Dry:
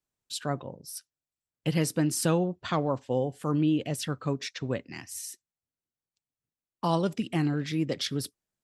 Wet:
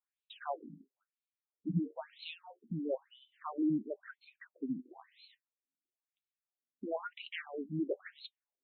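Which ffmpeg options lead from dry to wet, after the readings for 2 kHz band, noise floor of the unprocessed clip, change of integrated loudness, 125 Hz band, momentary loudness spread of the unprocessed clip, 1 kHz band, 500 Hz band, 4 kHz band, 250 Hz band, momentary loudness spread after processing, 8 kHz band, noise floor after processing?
-9.0 dB, under -85 dBFS, -10.0 dB, -15.0 dB, 13 LU, -11.5 dB, -10.5 dB, -14.0 dB, -9.0 dB, 19 LU, under -40 dB, under -85 dBFS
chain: -af "flanger=delay=4.9:depth=6:regen=53:speed=0.26:shape=sinusoidal,afftfilt=real='re*between(b*sr/1024,230*pow(3100/230,0.5+0.5*sin(2*PI*1*pts/sr))/1.41,230*pow(3100/230,0.5+0.5*sin(2*PI*1*pts/sr))*1.41)':imag='im*between(b*sr/1024,230*pow(3100/230,0.5+0.5*sin(2*PI*1*pts/sr))/1.41,230*pow(3100/230,0.5+0.5*sin(2*PI*1*pts/sr))*1.41)':win_size=1024:overlap=0.75,volume=1.26"

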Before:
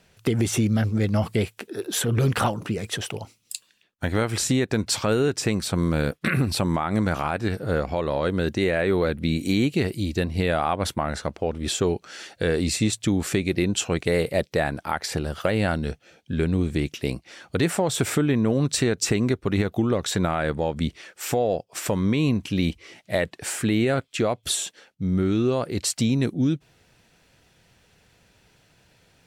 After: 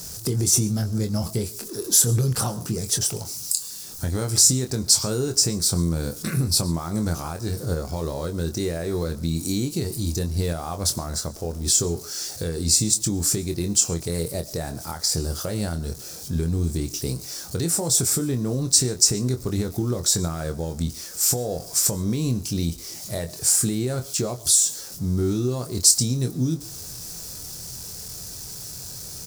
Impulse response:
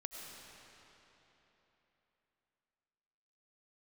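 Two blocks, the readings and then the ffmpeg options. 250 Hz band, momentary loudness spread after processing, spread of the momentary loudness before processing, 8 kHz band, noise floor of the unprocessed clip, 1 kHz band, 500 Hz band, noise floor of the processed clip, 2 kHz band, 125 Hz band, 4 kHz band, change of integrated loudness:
-3.5 dB, 13 LU, 8 LU, +11.5 dB, -63 dBFS, -7.5 dB, -5.0 dB, -38 dBFS, -11.5 dB, +0.5 dB, +4.5 dB, +2.0 dB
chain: -filter_complex "[0:a]aeval=exprs='val(0)+0.5*0.0133*sgn(val(0))':c=same,asplit=2[s0][s1];[s1]adelay=24,volume=0.422[s2];[s0][s2]amix=inputs=2:normalize=0,asplit=2[s3][s4];[1:a]atrim=start_sample=2205,atrim=end_sample=6615[s5];[s4][s5]afir=irnorm=-1:irlink=0,volume=0.531[s6];[s3][s6]amix=inputs=2:normalize=0,alimiter=limit=0.266:level=0:latency=1:release=389,firequalizer=gain_entry='entry(130,0);entry(240,-6);entry(390,-4);entry(560,-8);entry(1200,-8);entry(1900,-14);entry(2900,-13);entry(5000,9)':delay=0.05:min_phase=1"

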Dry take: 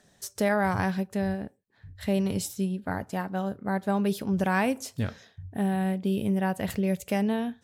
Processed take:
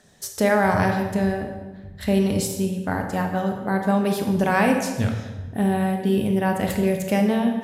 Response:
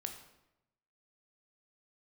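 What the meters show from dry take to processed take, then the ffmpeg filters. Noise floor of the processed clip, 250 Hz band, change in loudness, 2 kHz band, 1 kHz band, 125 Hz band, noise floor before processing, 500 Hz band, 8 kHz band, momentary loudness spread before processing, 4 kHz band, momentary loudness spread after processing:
-41 dBFS, +5.5 dB, +6.0 dB, +6.5 dB, +7.0 dB, +5.5 dB, -64 dBFS, +7.5 dB, +6.5 dB, 9 LU, +6.5 dB, 10 LU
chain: -filter_complex "[1:a]atrim=start_sample=2205,asetrate=29106,aresample=44100[s0];[0:a][s0]afir=irnorm=-1:irlink=0,volume=2"

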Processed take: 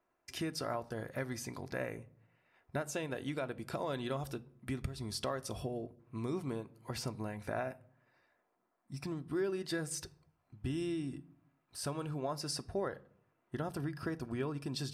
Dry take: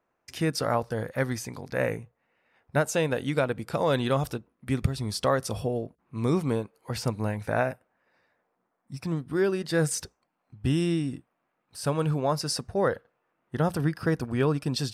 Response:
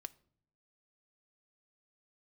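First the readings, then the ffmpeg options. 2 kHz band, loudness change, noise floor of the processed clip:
-11.0 dB, -11.5 dB, -80 dBFS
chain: -filter_complex "[0:a]acompressor=threshold=0.0251:ratio=3[s0];[1:a]atrim=start_sample=2205[s1];[s0][s1]afir=irnorm=-1:irlink=0,volume=1.12"

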